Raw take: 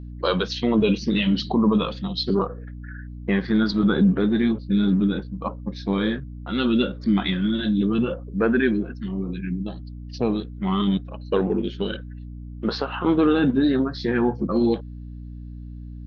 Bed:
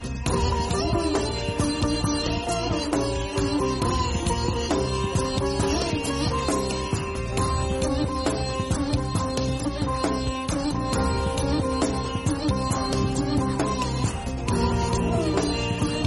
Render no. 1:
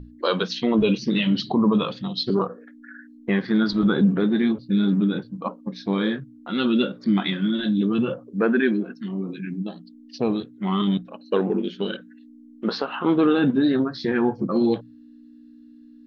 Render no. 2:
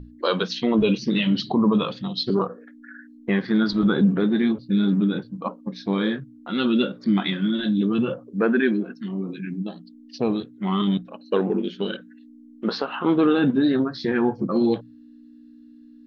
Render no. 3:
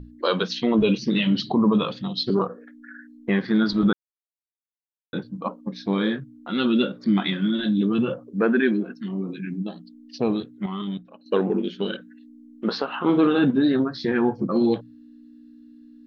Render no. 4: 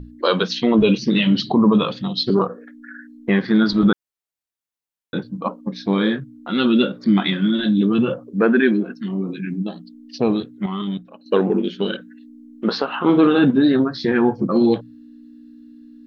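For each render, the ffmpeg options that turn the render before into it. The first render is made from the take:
-af "bandreject=f=60:t=h:w=6,bandreject=f=120:t=h:w=6,bandreject=f=180:t=h:w=6"
-af anull
-filter_complex "[0:a]asettb=1/sr,asplit=3[a][b][c];[a]atrim=end=13.034[d];[b]atrim=start=13.03:end=13.45,asetpts=PTS-STARTPTS,afade=t=in:d=0.004:c=qsin,afade=t=out:st=0.416:d=0.004:c=qsin,asplit=2[e][f];[f]adelay=47,volume=-9dB[g];[e][g]amix=inputs=2:normalize=0,atrim=end_sample=18522[h];[c]atrim=start=13.446[i];[d][h]acrossfade=d=0.004:c1=hsin:c2=qsin[j];[j][i]acrossfade=d=0.004:c1=qsin:c2=hsin,asplit=5[k][l][m][n][o];[k]atrim=end=3.93,asetpts=PTS-STARTPTS,afade=t=out:st=3.926:d=0.004:c=hsin[p];[l]atrim=start=3.93:end=5.13,asetpts=PTS-STARTPTS,volume=0[q];[m]atrim=start=5.13:end=10.662,asetpts=PTS-STARTPTS,afade=t=in:d=0.004:c=hsin[r];[n]atrim=start=10.658:end=11.262,asetpts=PTS-STARTPTS,volume=-8dB[s];[o]atrim=start=11.258[t];[p][q][r]concat=n=3:v=0:a=1[u];[u][s]acrossfade=d=0.004:c1=hsin:c2=hsin[v];[v][t]acrossfade=d=0.004:c1=hsin:c2=hsin"
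-af "volume=4.5dB"

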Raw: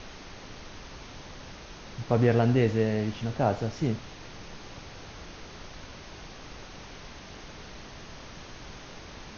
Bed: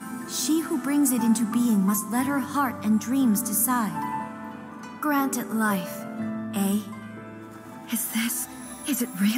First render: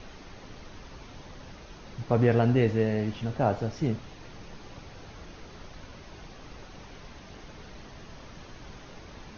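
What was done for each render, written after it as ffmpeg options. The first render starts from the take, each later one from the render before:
-af "afftdn=nr=6:nf=-46"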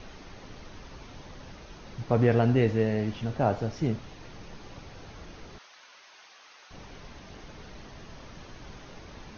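-filter_complex "[0:a]asettb=1/sr,asplit=3[a][b][c];[a]atrim=end=5.584[d];[b]atrim=start=5.58:end=6.71,asetpts=PTS-STARTPTS,afade=t=in:d=0.004:c=qsin,afade=t=out:st=1.126:d=0.004:c=qsin,highpass=1.1k[e];[c]atrim=start=6.706[f];[d][e]acrossfade=d=0.004:c1=hsin:c2=qsin[g];[g][f]acrossfade=d=0.004:c1=qsin:c2=hsin"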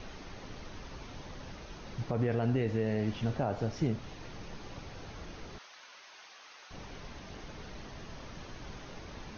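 -af "alimiter=limit=-20.5dB:level=0:latency=1:release=183"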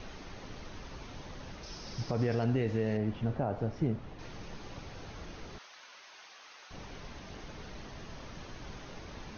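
-filter_complex "[0:a]asettb=1/sr,asplit=3[a][b][c];[a]atrim=end=1.634[d];[b]atrim=start=1.63:end=2.44,asetpts=PTS-STARTPTS,afade=t=in:d=0.004:c=qsin,afade=t=out:st=0.806:d=0.004:c=qsin,equalizer=f=5.2k:w=2.7:g=14[e];[c]atrim=start=2.436[f];[d][e]acrossfade=d=0.004:c1=hsin:c2=qsin[g];[g][f]acrossfade=d=0.004:c1=qsin:c2=hsin,asettb=1/sr,asplit=3[h][i][j];[h]atrim=end=2.974[k];[i]atrim=start=2.97:end=4.19,asetpts=PTS-STARTPTS,afade=t=in:d=0.004:c=qsin,afade=t=out:st=1.216:d=0.004:c=qsin,lowpass=f=1.4k:p=1[l];[j]atrim=start=4.186[m];[k][l]acrossfade=d=0.004:c1=hsin:c2=qsin[n];[n][m]acrossfade=d=0.004:c1=qsin:c2=hsin"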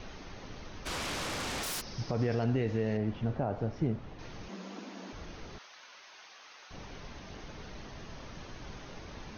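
-filter_complex "[0:a]asplit=3[a][b][c];[a]afade=t=out:st=0.85:d=0.02[d];[b]aeval=exprs='0.0224*sin(PI/2*6.31*val(0)/0.0224)':c=same,afade=t=in:st=0.85:d=0.02,afade=t=out:st=1.8:d=0.02[e];[c]afade=t=in:st=1.8:d=0.02[f];[d][e][f]amix=inputs=3:normalize=0,asettb=1/sr,asplit=3[g][h][i];[g]atrim=end=4.484[j];[h]atrim=start=4.48:end=5.13,asetpts=PTS-STARTPTS,afade=t=in:d=0.004:c=qsin,afade=t=out:st=0.646:d=0.004:c=qsin,afreqshift=180[k];[i]atrim=start=5.126[l];[j][k]acrossfade=d=0.004:c1=hsin:c2=qsin[m];[m][l]acrossfade=d=0.004:c1=qsin:c2=hsin"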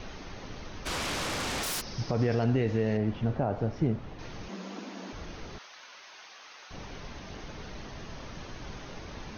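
-af "volume=3.5dB"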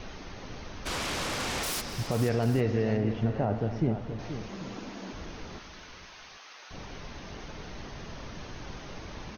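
-af "aecho=1:1:260|480|793:0.15|0.299|0.133"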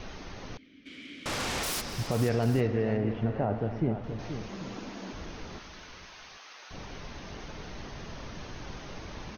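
-filter_complex "[0:a]asettb=1/sr,asplit=3[a][b][c];[a]atrim=end=0.574[d];[b]atrim=start=0.57:end=1.26,asetpts=PTS-STARTPTS,afade=t=in:d=0.004:c=qsin,afade=t=out:st=0.686:d=0.004:c=qsin,asplit=3[e][f][g];[e]bandpass=f=270:t=q:w=8,volume=0dB[h];[f]bandpass=f=2.29k:t=q:w=8,volume=-6dB[i];[g]bandpass=f=3.01k:t=q:w=8,volume=-9dB[j];[h][i][j]amix=inputs=3:normalize=0[k];[c]atrim=start=1.256[l];[d][k]acrossfade=d=0.004:c1=hsin:c2=qsin[m];[m][l]acrossfade=d=0.004:c1=qsin:c2=hsin,asettb=1/sr,asplit=3[n][o][p];[n]atrim=end=2.674[q];[o]atrim=start=2.67:end=4.04,asetpts=PTS-STARTPTS,afade=t=in:d=0.004:c=qsin,afade=t=out:st=1.366:d=0.004:c=qsin,bass=f=250:g=-2,treble=f=4k:g=-12[r];[p]atrim=start=4.036[s];[q][r]acrossfade=d=0.004:c1=hsin:c2=qsin[t];[t][s]acrossfade=d=0.004:c1=qsin:c2=hsin"

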